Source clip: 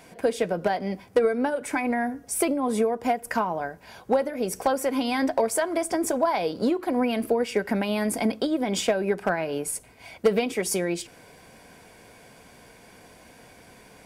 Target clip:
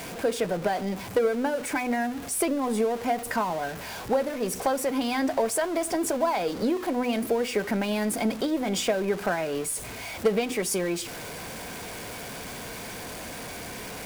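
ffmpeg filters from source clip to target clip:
-af "aeval=exprs='val(0)+0.5*0.0316*sgn(val(0))':c=same,bandreject=f=250.6:t=h:w=4,bandreject=f=501.2:t=h:w=4,bandreject=f=751.8:t=h:w=4,volume=0.708"

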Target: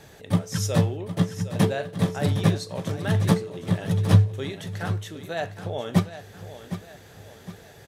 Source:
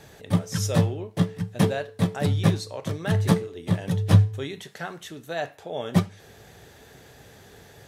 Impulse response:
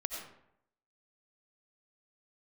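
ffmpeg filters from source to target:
-filter_complex "[0:a]asettb=1/sr,asplit=3[s0][s1][s2];[s0]atrim=end=1.744[s3];[s1]atrim=start=1.74:end=2.41,asetpts=PTS-STARTPTS,afade=t=in:d=0.004:c=qsin,afade=t=out:st=0.666:d=0.004:c=qsin,asplit=2[s4][s5];[s5]adelay=43,volume=0.316[s6];[s4][s6]amix=inputs=2:normalize=0,atrim=end_sample=29547[s7];[s2]atrim=start=2.406[s8];[s3][s7]acrossfade=d=0.004:c1=hsin:c2=qsin[s9];[s9][s8]acrossfade=d=0.004:c1=qsin:c2=hsin,aecho=1:1:760|1520|2280|3040:0.251|0.105|0.0443|0.0186"

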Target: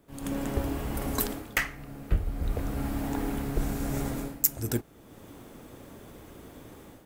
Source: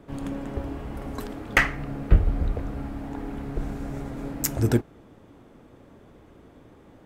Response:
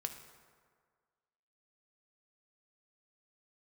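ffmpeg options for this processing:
-af "dynaudnorm=f=110:g=5:m=5.96,aemphasis=mode=production:type=75fm,volume=0.266"

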